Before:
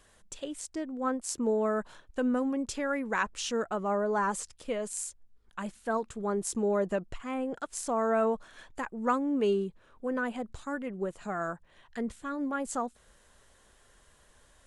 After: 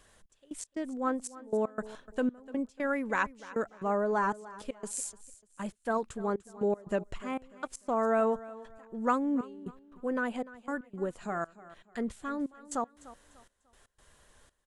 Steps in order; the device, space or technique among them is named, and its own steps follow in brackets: trance gate with a delay (step gate "xx..x.xx" 118 bpm -24 dB; feedback echo 0.297 s, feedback 31%, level -18 dB)

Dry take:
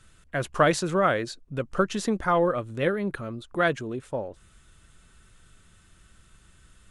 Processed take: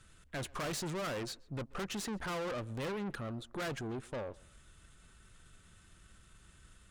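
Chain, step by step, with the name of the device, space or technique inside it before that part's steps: rockabilly slapback (tube stage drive 35 dB, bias 0.55; tape echo 0.131 s, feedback 30%, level -22.5 dB, low-pass 3600 Hz); gain -1 dB

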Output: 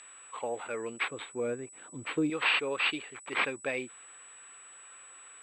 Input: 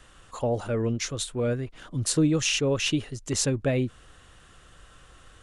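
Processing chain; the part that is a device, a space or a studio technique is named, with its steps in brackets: 1.08–2.3 tilt shelf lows +9 dB, about 710 Hz; toy sound module (decimation joined by straight lines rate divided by 6×; pulse-width modulation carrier 7900 Hz; speaker cabinet 610–4600 Hz, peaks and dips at 630 Hz -8 dB, 2400 Hz +9 dB, 3700 Hz +5 dB)

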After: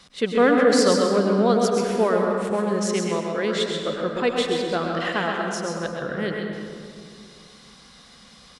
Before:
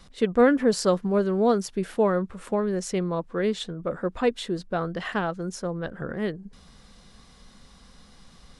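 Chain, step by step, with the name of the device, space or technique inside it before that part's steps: PA in a hall (HPF 160 Hz 6 dB/oct; bell 3800 Hz +6.5 dB 2.7 oct; echo 0.131 s -6 dB; reverb RT60 2.2 s, pre-delay 96 ms, DRR 2.5 dB); 2.5–3.69 HPF 110 Hz

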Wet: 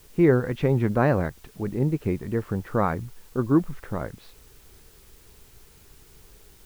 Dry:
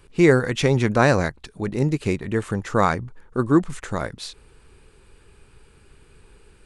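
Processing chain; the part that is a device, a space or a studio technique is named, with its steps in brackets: cassette deck with a dirty head (tape spacing loss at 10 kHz 43 dB; wow and flutter; white noise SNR 30 dB); gain -1.5 dB

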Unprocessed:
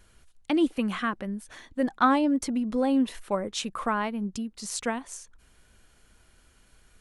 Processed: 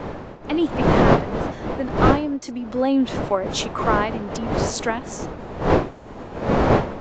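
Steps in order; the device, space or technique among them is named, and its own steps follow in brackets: HPF 250 Hz 24 dB/oct; smartphone video outdoors (wind noise 600 Hz -25 dBFS; AGC gain up to 8 dB; gain -1 dB; AAC 48 kbps 16000 Hz)

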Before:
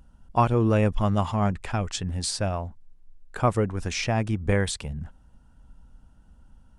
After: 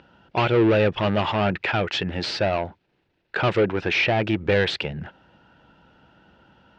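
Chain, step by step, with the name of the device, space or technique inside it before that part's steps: 3.81–4.23 high shelf 5100 Hz -11 dB; overdrive pedal into a guitar cabinet (overdrive pedal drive 26 dB, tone 3100 Hz, clips at -8 dBFS; speaker cabinet 100–4300 Hz, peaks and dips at 240 Hz -7 dB, 350 Hz +5 dB, 740 Hz -3 dB, 1100 Hz -9 dB, 2600 Hz +3 dB); gain -2 dB

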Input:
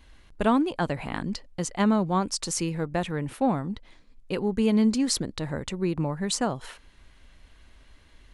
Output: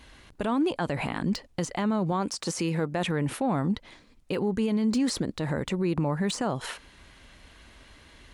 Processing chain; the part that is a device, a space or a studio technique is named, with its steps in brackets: 2.12–3.08 HPF 120 Hz 6 dB/oct; podcast mastering chain (HPF 99 Hz 6 dB/oct; de-esser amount 80%; compressor 2.5:1, threshold -24 dBFS, peak gain reduction 5 dB; limiter -26 dBFS, peak gain reduction 11 dB; gain +7.5 dB; MP3 128 kbps 44100 Hz)

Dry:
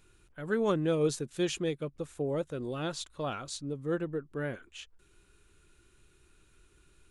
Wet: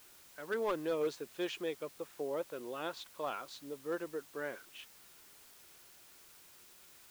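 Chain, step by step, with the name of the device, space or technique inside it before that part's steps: drive-through speaker (BPF 420–3400 Hz; bell 980 Hz +4.5 dB 0.28 oct; hard clip -25.5 dBFS, distortion -18 dB; white noise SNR 18 dB); gain -2.5 dB

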